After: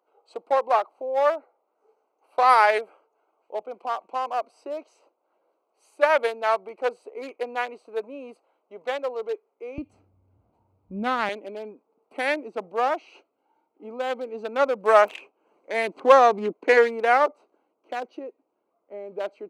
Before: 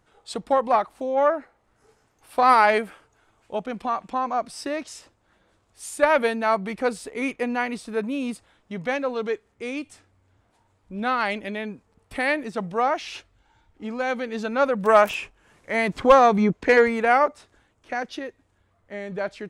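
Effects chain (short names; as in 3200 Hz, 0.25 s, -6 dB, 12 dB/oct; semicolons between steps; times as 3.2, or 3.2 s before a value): Wiener smoothing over 25 samples; HPF 410 Hz 24 dB/oct, from 9.78 s 58 Hz, from 11.29 s 310 Hz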